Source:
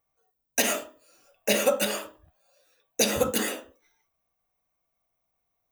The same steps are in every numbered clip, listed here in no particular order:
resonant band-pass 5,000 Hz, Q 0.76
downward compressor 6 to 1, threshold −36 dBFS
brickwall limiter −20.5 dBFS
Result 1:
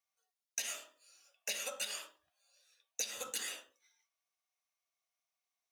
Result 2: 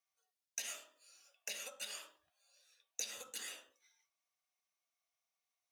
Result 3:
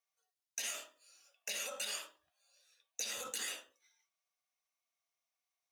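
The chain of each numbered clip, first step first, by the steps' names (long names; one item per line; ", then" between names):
resonant band-pass, then downward compressor, then brickwall limiter
downward compressor, then brickwall limiter, then resonant band-pass
brickwall limiter, then resonant band-pass, then downward compressor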